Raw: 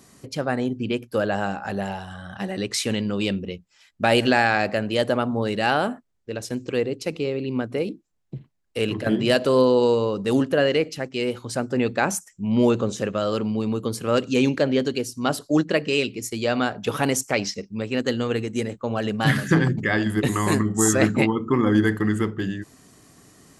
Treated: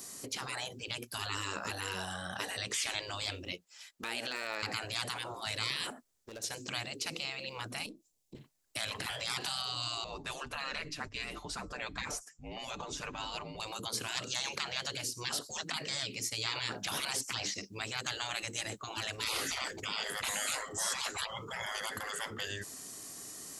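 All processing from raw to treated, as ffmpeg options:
ffmpeg -i in.wav -filter_complex "[0:a]asettb=1/sr,asplit=3[link_01][link_02][link_03];[link_01]atrim=end=3.524[link_04];[link_02]atrim=start=3.52:end=4.63,asetpts=PTS-STARTPTS,afade=type=in:duration=0.004:curve=qsin,afade=type=out:start_time=1.106:duration=0.004:curve=qsin,bass=frequency=250:gain=-14,treble=frequency=4000:gain=-4,acompressor=threshold=-30dB:ratio=5:attack=3.2:release=140:knee=1:detection=peak,asoftclip=type=hard:threshold=-21dB[link_05];[link_03]atrim=start=4.626[link_06];[link_04][link_05]acrossfade=duration=0.004:curve1=hsin:curve2=qsin[link_07];[link_07][link_06]acrossfade=duration=0.004:curve1=qsin:curve2=hsin,asettb=1/sr,asplit=3[link_08][link_09][link_10];[link_08]atrim=end=5.904[link_11];[link_09]atrim=start=5.9:end=6.44,asetpts=PTS-STARTPTS,afade=type=in:duration=0.004:curve=qsin,afade=type=out:start_time=0.536:duration=0.004:curve=qsin,acompressor=threshold=-40dB:ratio=4:attack=3.2:release=140:knee=1:detection=peak,asoftclip=type=hard:threshold=-38.5dB[link_12];[link_10]atrim=start=6.436[link_13];[link_11][link_12]acrossfade=duration=0.004:curve1=hsin:curve2=qsin[link_14];[link_14][link_13]acrossfade=duration=0.004:curve1=qsin:curve2=hsin,asettb=1/sr,asplit=3[link_15][link_16][link_17];[link_15]atrim=end=7.864[link_18];[link_16]atrim=start=7.86:end=8.35,asetpts=PTS-STARTPTS,afade=type=in:duration=0.004:curve=qsin,afade=type=out:start_time=0.486:duration=0.004:curve=qsin,aeval=exprs='if(lt(val(0),0),0.708*val(0),val(0))':channel_layout=same,equalizer=frequency=1400:width=1.5:gain=-14,acompressor=threshold=-48dB:ratio=2:attack=3.2:release=140:knee=1:detection=peak[link_19];[link_17]atrim=start=8.346[link_20];[link_18][link_19]acrossfade=duration=0.004:curve1=hsin:curve2=qsin[link_21];[link_21][link_20]acrossfade=duration=0.004:curve1=qsin:curve2=hsin,asettb=1/sr,asplit=3[link_22][link_23][link_24];[link_22]atrim=end=10.044[link_25];[link_23]atrim=start=10.04:end=13.6,asetpts=PTS-STARTPTS,afade=type=in:duration=0.004:curve=qsin,afade=type=out:start_time=3.556:duration=0.004:curve=qsin,lowpass=frequency=1300:poles=1,aecho=1:1:6.7:0.56,atrim=end_sample=156996,afreqshift=-160[link_26];[link_24]atrim=start=13.596[link_27];[link_25][link_26]acrossfade=duration=0.004:curve1=hsin:curve2=qsin[link_28];[link_28][link_27]acrossfade=duration=0.004:curve1=qsin:curve2=hsin,acrossover=split=4600[link_29][link_30];[link_30]acompressor=threshold=-51dB:ratio=4:attack=1:release=60[link_31];[link_29][link_31]amix=inputs=2:normalize=0,bass=frequency=250:gain=-9,treble=frequency=4000:gain=12,afftfilt=real='re*lt(hypot(re,im),0.0708)':imag='im*lt(hypot(re,im),0.0708)':win_size=1024:overlap=0.75" out.wav

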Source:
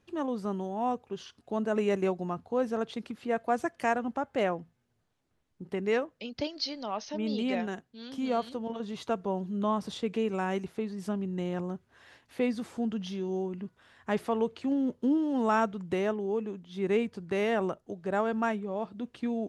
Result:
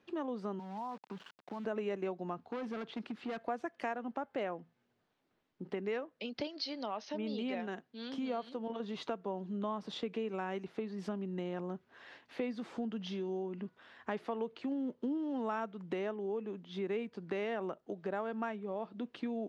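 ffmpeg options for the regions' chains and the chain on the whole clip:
ffmpeg -i in.wav -filter_complex "[0:a]asettb=1/sr,asplit=3[link_01][link_02][link_03];[link_01]atrim=end=0.594[link_04];[link_02]atrim=start=0.59:end=1.65,asetpts=PTS-STARTPTS,afade=type=in:duration=0.004:curve=qsin,afade=type=out:start_time=1.056:duration=0.004:curve=qsin,highpass=frequency=110:width=0.5412,highpass=frequency=110:width=1.3066,equalizer=frequency=190:width_type=q:width=4:gain=8,equalizer=frequency=370:width_type=q:width=4:gain=-8,equalizer=frequency=570:width_type=q:width=4:gain=-6,equalizer=frequency=950:width_type=q:width=4:gain=10,equalizer=frequency=1500:width_type=q:width=4:gain=4,equalizer=frequency=2100:width_type=q:width=4:gain=-6,lowpass=frequency=2700:width=0.5412,lowpass=frequency=2700:width=1.3066,acompressor=threshold=-40dB:ratio=5:attack=3.2:release=140:knee=1:detection=peak,aeval=exprs='val(0)*gte(abs(val(0)),0.00282)':channel_layout=same[link_05];[link_03]atrim=start=1.646[link_06];[link_04][link_05]acrossfade=duration=0.004:curve1=hsin:curve2=qsin[link_07];[link_07][link_06]acrossfade=duration=0.004:curve1=qsin:curve2=hsin,asettb=1/sr,asplit=3[link_08][link_09][link_10];[link_08]atrim=end=2.434[link_11];[link_09]atrim=start=2.43:end=3.45,asetpts=PTS-STARTPTS,afade=type=in:duration=0.004:curve=qsin,afade=type=out:start_time=1.016:duration=0.004:curve=qsin,acrossover=split=2900[link_12][link_13];[link_13]acompressor=threshold=-54dB:ratio=4:attack=1:release=60[link_14];[link_12][link_14]amix=inputs=2:normalize=0,equalizer=frequency=540:width=2:gain=-5,volume=33.5dB,asoftclip=hard,volume=-33.5dB[link_15];[link_10]atrim=start=3.446[link_16];[link_11][link_15]acrossfade=duration=0.004:curve1=hsin:curve2=qsin[link_17];[link_17][link_16]acrossfade=duration=0.004:curve1=qsin:curve2=hsin,acrossover=split=170 5200:gain=0.141 1 0.112[link_18][link_19][link_20];[link_18][link_19][link_20]amix=inputs=3:normalize=0,acompressor=threshold=-39dB:ratio=3,volume=2dB" out.wav

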